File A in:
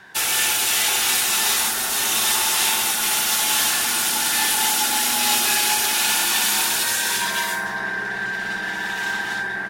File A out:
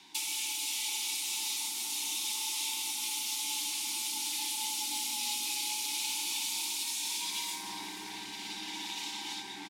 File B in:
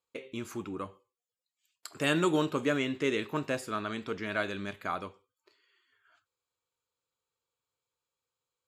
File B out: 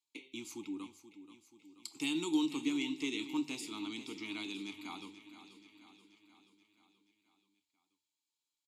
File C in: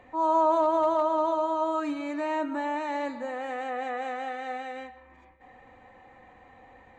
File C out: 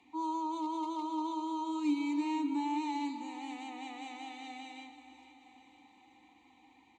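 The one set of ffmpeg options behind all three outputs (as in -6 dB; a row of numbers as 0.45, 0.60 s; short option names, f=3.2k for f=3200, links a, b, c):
-filter_complex "[0:a]lowshelf=f=120:g=12,acrossover=split=290|850[a][b][c];[c]crystalizer=i=8:c=0[d];[a][b][d]amix=inputs=3:normalize=0,aemphasis=mode=reproduction:type=cd,bandreject=f=50:t=h:w=6,bandreject=f=100:t=h:w=6,bandreject=f=150:t=h:w=6,acompressor=threshold=-21dB:ratio=4,aexciter=amount=6.2:drive=7.3:freq=3.3k,asplit=3[e][f][g];[e]bandpass=f=300:t=q:w=8,volume=0dB[h];[f]bandpass=f=870:t=q:w=8,volume=-6dB[i];[g]bandpass=f=2.24k:t=q:w=8,volume=-9dB[j];[h][i][j]amix=inputs=3:normalize=0,asplit=2[k][l];[l]aecho=0:1:481|962|1443|1924|2405|2886:0.224|0.13|0.0753|0.0437|0.0253|0.0147[m];[k][m]amix=inputs=2:normalize=0"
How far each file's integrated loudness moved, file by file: -14.5, -6.0, -8.5 LU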